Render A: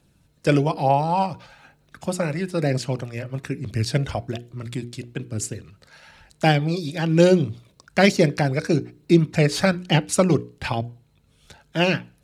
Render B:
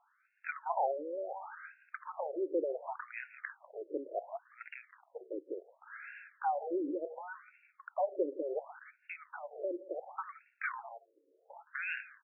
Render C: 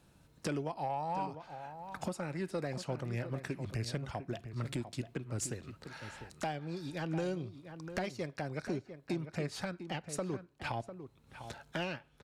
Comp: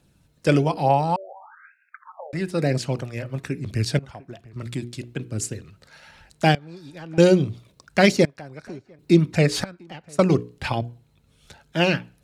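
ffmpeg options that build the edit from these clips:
-filter_complex "[2:a]asplit=4[s0][s1][s2][s3];[0:a]asplit=6[s4][s5][s6][s7][s8][s9];[s4]atrim=end=1.162[s10];[1:a]atrim=start=1.158:end=2.332[s11];[s5]atrim=start=2.328:end=3.992[s12];[s0]atrim=start=3.988:end=4.562[s13];[s6]atrim=start=4.558:end=6.552[s14];[s1]atrim=start=6.548:end=7.182[s15];[s7]atrim=start=7.178:end=8.252[s16];[s2]atrim=start=8.248:end=8.992[s17];[s8]atrim=start=8.988:end=9.642[s18];[s3]atrim=start=9.638:end=10.192[s19];[s9]atrim=start=10.188[s20];[s10][s11]acrossfade=d=0.004:c1=hsin:c2=hsin[s21];[s21][s12]acrossfade=d=0.004:c1=hsin:c2=hsin[s22];[s22][s13]acrossfade=d=0.004:c1=hsin:c2=hsin[s23];[s23][s14]acrossfade=d=0.004:c1=hsin:c2=hsin[s24];[s24][s15]acrossfade=d=0.004:c1=hsin:c2=hsin[s25];[s25][s16]acrossfade=d=0.004:c1=hsin:c2=hsin[s26];[s26][s17]acrossfade=d=0.004:c1=hsin:c2=hsin[s27];[s27][s18]acrossfade=d=0.004:c1=hsin:c2=hsin[s28];[s28][s19]acrossfade=d=0.004:c1=hsin:c2=hsin[s29];[s29][s20]acrossfade=d=0.004:c1=hsin:c2=hsin"

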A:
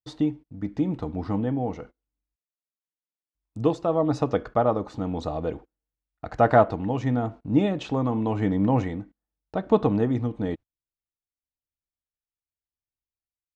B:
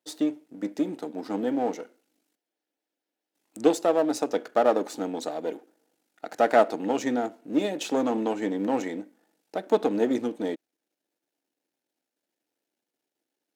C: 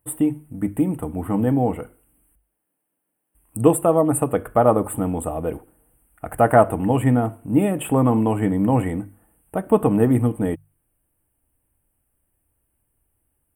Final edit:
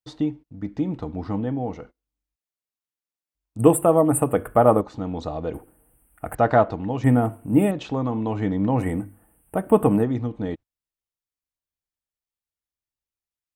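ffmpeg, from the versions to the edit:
-filter_complex "[2:a]asplit=4[s0][s1][s2][s3];[0:a]asplit=5[s4][s5][s6][s7][s8];[s4]atrim=end=3.592[s9];[s0]atrim=start=3.588:end=4.812[s10];[s5]atrim=start=4.808:end=5.542[s11];[s1]atrim=start=5.538:end=6.352[s12];[s6]atrim=start=6.348:end=7.042[s13];[s2]atrim=start=7.038:end=7.712[s14];[s7]atrim=start=7.708:end=8.87[s15];[s3]atrim=start=8.77:end=10.05[s16];[s8]atrim=start=9.95[s17];[s9][s10]acrossfade=d=0.004:c1=hsin:c2=hsin[s18];[s18][s11]acrossfade=d=0.004:c1=hsin:c2=hsin[s19];[s19][s12]acrossfade=d=0.004:c1=hsin:c2=hsin[s20];[s20][s13]acrossfade=d=0.004:c1=hsin:c2=hsin[s21];[s21][s14]acrossfade=d=0.004:c1=hsin:c2=hsin[s22];[s22][s15]acrossfade=d=0.004:c1=hsin:c2=hsin[s23];[s23][s16]acrossfade=d=0.1:c1=tri:c2=tri[s24];[s24][s17]acrossfade=d=0.1:c1=tri:c2=tri"

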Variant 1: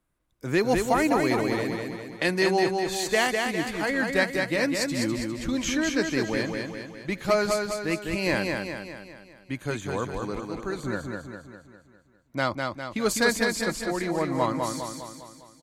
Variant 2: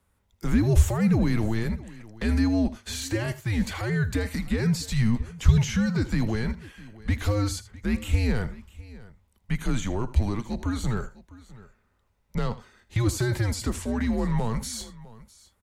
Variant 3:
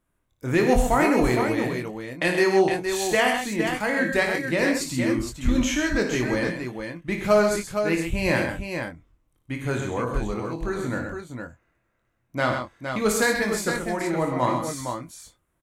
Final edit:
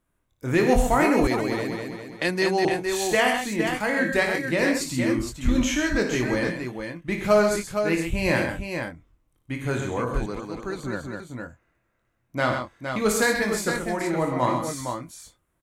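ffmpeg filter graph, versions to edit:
-filter_complex "[0:a]asplit=2[s0][s1];[2:a]asplit=3[s2][s3][s4];[s2]atrim=end=1.272[s5];[s0]atrim=start=1.268:end=2.652[s6];[s3]atrim=start=2.648:end=10.262[s7];[s1]atrim=start=10.258:end=11.202[s8];[s4]atrim=start=11.198[s9];[s5][s6]acrossfade=d=0.004:c1=hsin:c2=hsin[s10];[s10][s7]acrossfade=d=0.004:c1=hsin:c2=hsin[s11];[s11][s8]acrossfade=d=0.004:c1=hsin:c2=hsin[s12];[s12][s9]acrossfade=d=0.004:c1=hsin:c2=hsin"

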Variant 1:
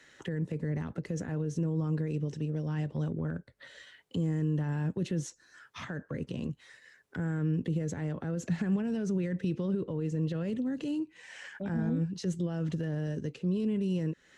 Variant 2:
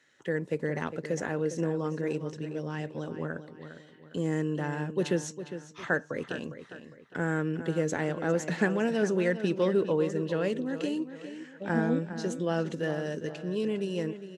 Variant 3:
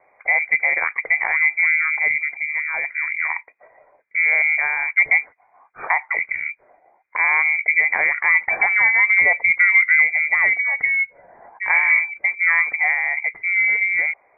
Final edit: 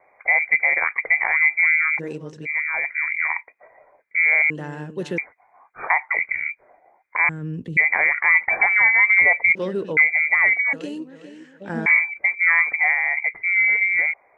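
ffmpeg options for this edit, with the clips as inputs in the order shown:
-filter_complex "[1:a]asplit=4[s0][s1][s2][s3];[2:a]asplit=6[s4][s5][s6][s7][s8][s9];[s4]atrim=end=2[s10];[s0]atrim=start=1.98:end=2.47[s11];[s5]atrim=start=2.45:end=4.502[s12];[s1]atrim=start=4.498:end=5.182[s13];[s6]atrim=start=5.178:end=7.292[s14];[0:a]atrim=start=7.288:end=7.772[s15];[s7]atrim=start=7.768:end=9.552[s16];[s2]atrim=start=9.548:end=9.972[s17];[s8]atrim=start=9.968:end=10.732[s18];[s3]atrim=start=10.728:end=11.862[s19];[s9]atrim=start=11.858[s20];[s10][s11]acrossfade=d=0.02:c1=tri:c2=tri[s21];[s21][s12]acrossfade=d=0.02:c1=tri:c2=tri[s22];[s22][s13]acrossfade=d=0.004:c1=hsin:c2=hsin[s23];[s23][s14]acrossfade=d=0.004:c1=hsin:c2=hsin[s24];[s24][s15]acrossfade=d=0.004:c1=hsin:c2=hsin[s25];[s25][s16]acrossfade=d=0.004:c1=hsin:c2=hsin[s26];[s26][s17]acrossfade=d=0.004:c1=hsin:c2=hsin[s27];[s27][s18]acrossfade=d=0.004:c1=hsin:c2=hsin[s28];[s28][s19]acrossfade=d=0.004:c1=hsin:c2=hsin[s29];[s29][s20]acrossfade=d=0.004:c1=hsin:c2=hsin"

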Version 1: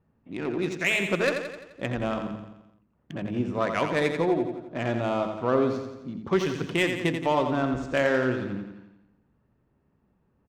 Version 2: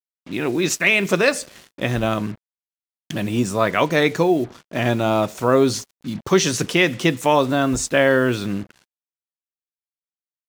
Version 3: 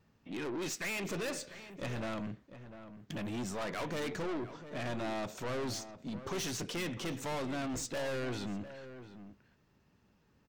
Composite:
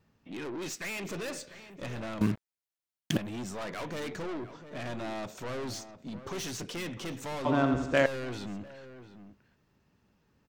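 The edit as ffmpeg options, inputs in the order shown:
-filter_complex "[2:a]asplit=3[s0][s1][s2];[s0]atrim=end=2.212[s3];[1:a]atrim=start=2.208:end=3.172[s4];[s1]atrim=start=3.168:end=7.452[s5];[0:a]atrim=start=7.448:end=8.062[s6];[s2]atrim=start=8.058[s7];[s3][s4]acrossfade=d=0.004:c1=hsin:c2=hsin[s8];[s8][s5]acrossfade=d=0.004:c1=hsin:c2=hsin[s9];[s9][s6]acrossfade=d=0.004:c1=hsin:c2=hsin[s10];[s10][s7]acrossfade=d=0.004:c1=hsin:c2=hsin"

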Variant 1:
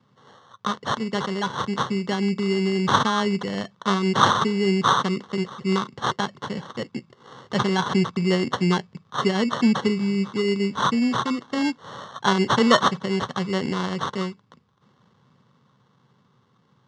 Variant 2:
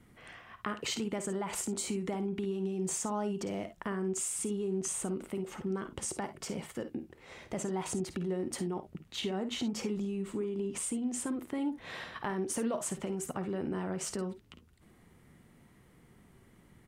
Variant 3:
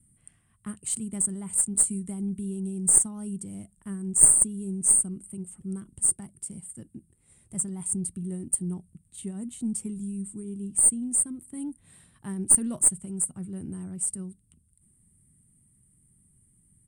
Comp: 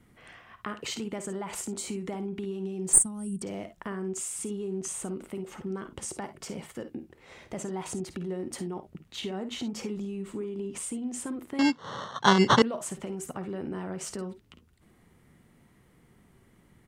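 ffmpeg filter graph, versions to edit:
-filter_complex "[1:a]asplit=3[s0][s1][s2];[s0]atrim=end=2.932[s3];[2:a]atrim=start=2.928:end=3.422[s4];[s1]atrim=start=3.418:end=11.592[s5];[0:a]atrim=start=11.588:end=12.622[s6];[s2]atrim=start=12.618[s7];[s3][s4]acrossfade=d=0.004:c1=hsin:c2=hsin[s8];[s8][s5]acrossfade=d=0.004:c1=hsin:c2=hsin[s9];[s9][s6]acrossfade=d=0.004:c1=hsin:c2=hsin[s10];[s10][s7]acrossfade=d=0.004:c1=hsin:c2=hsin"

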